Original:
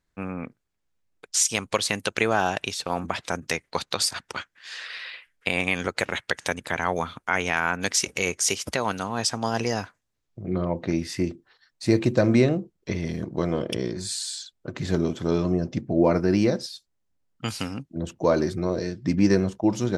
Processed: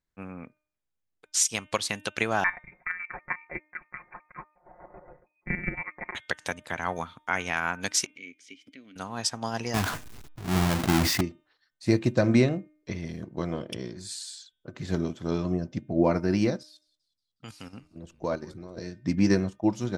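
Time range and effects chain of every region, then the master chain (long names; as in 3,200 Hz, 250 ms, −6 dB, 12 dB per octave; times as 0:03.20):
0:02.44–0:06.15: voice inversion scrambler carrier 2,500 Hz + comb filter 5.6 ms, depth 93% + square-wave tremolo 7.2 Hz, depth 60%, duty 40%
0:08.06–0:08.96: formant filter i + upward compression, threshold −40 dBFS
0:09.74–0:11.21: each half-wave held at its own peak + notch filter 540 Hz, Q 6 + level that may fall only so fast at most 29 dB per second
0:16.63–0:18.77: output level in coarse steps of 11 dB + echo with shifted repeats 182 ms, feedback 49%, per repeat −100 Hz, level −20 dB
whole clip: hum removal 304.4 Hz, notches 12; dynamic equaliser 440 Hz, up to −4 dB, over −36 dBFS, Q 2.3; expander for the loud parts 1.5 to 1, over −35 dBFS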